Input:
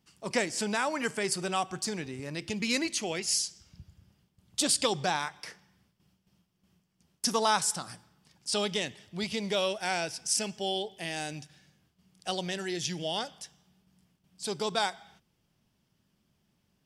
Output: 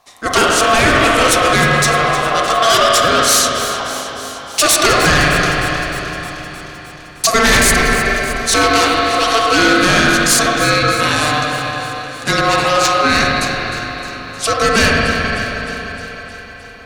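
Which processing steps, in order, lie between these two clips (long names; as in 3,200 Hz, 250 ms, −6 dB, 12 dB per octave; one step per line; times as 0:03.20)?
spring reverb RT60 3.3 s, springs 39/45/53 ms, chirp 60 ms, DRR −1 dB
ring modulation 900 Hz
sine wavefolder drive 11 dB, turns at −11.5 dBFS
on a send: delay that swaps between a low-pass and a high-pass 154 ms, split 2,100 Hz, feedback 82%, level −11 dB
on the sum: level +6 dB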